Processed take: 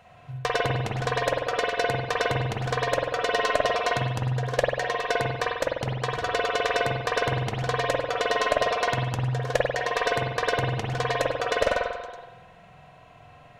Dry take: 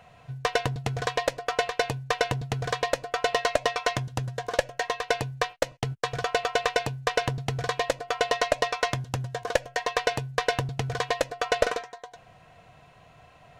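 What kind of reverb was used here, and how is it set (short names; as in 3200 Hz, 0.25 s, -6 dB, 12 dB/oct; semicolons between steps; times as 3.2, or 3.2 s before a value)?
spring tank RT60 1 s, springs 47 ms, chirp 50 ms, DRR -2.5 dB; gain -2 dB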